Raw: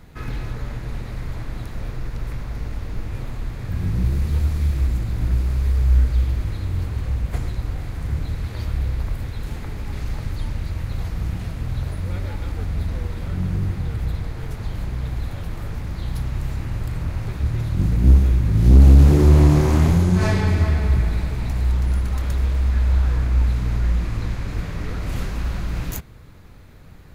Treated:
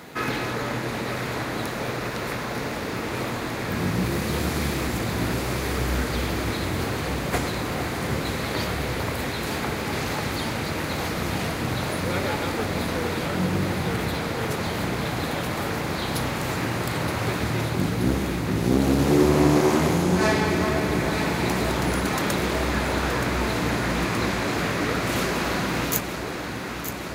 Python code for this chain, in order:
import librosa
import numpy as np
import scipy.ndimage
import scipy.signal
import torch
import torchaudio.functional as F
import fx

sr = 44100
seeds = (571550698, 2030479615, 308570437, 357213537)

p1 = scipy.signal.sosfilt(scipy.signal.butter(2, 280.0, 'highpass', fs=sr, output='sos'), x)
p2 = fx.rider(p1, sr, range_db=4, speed_s=0.5)
p3 = p2 + fx.echo_alternate(p2, sr, ms=462, hz=920.0, feedback_pct=88, wet_db=-8.0, dry=0)
y = F.gain(torch.from_numpy(p3), 7.5).numpy()